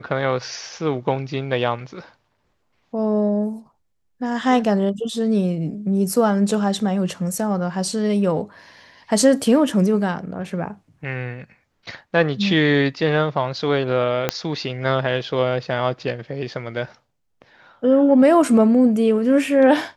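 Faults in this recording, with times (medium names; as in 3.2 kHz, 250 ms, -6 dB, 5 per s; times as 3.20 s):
14.29 s: pop -4 dBFS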